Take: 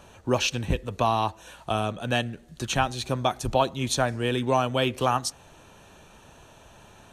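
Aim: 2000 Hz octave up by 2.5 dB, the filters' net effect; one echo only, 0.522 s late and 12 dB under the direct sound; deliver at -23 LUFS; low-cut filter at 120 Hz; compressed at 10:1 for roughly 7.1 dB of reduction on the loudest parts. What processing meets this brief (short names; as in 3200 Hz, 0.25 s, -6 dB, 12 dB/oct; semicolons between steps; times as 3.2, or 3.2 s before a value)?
HPF 120 Hz; bell 2000 Hz +3.5 dB; compressor 10:1, threshold -24 dBFS; echo 0.522 s -12 dB; gain +7.5 dB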